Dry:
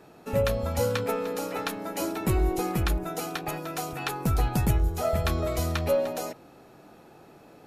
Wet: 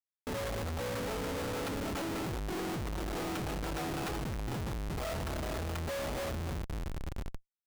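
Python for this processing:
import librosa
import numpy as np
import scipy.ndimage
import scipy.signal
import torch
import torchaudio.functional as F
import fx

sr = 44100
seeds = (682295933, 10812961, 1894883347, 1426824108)

y = fx.env_lowpass_down(x, sr, base_hz=1600.0, full_db=-21.5)
y = fx.echo_split(y, sr, split_hz=390.0, low_ms=643, high_ms=285, feedback_pct=52, wet_db=-9.0)
y = fx.schmitt(y, sr, flips_db=-34.5)
y = y * 10.0 ** (-8.5 / 20.0)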